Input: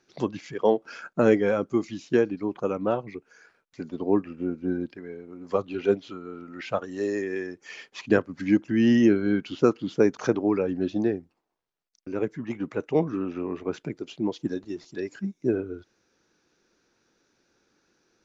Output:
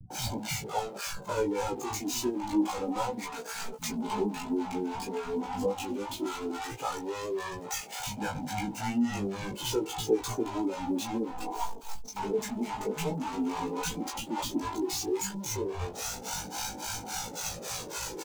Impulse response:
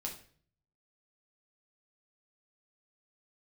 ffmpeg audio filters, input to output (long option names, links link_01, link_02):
-filter_complex "[0:a]aeval=exprs='val(0)+0.5*0.0794*sgn(val(0))':channel_layout=same,anlmdn=100,acrossover=split=620[link_01][link_02];[link_01]aeval=exprs='val(0)*(1-1/2+1/2*cos(2*PI*3.6*n/s))':channel_layout=same[link_03];[link_02]aeval=exprs='val(0)*(1-1/2-1/2*cos(2*PI*3.6*n/s))':channel_layout=same[link_04];[link_03][link_04]amix=inputs=2:normalize=0,highshelf=frequency=3700:gain=7.5,acrossover=split=290[link_05][link_06];[link_06]acompressor=threshold=-39dB:ratio=2[link_07];[link_05][link_07]amix=inputs=2:normalize=0,flanger=delay=1.3:depth=3.4:regen=-2:speed=0.12:shape=sinusoidal,superequalizer=9b=3.55:11b=0.631:15b=1.58,flanger=delay=17.5:depth=2.9:speed=0.28,acrossover=split=290[link_08][link_09];[link_08]aeval=exprs='val(0)*gte(abs(val(0)),0.00141)':channel_layout=same[link_10];[link_09]asplit=2[link_11][link_12];[link_12]adelay=16,volume=-3.5dB[link_13];[link_11][link_13]amix=inputs=2:normalize=0[link_14];[link_10][link_14]amix=inputs=2:normalize=0,acrossover=split=170[link_15][link_16];[link_16]adelay=100[link_17];[link_15][link_17]amix=inputs=2:normalize=0,volume=4dB"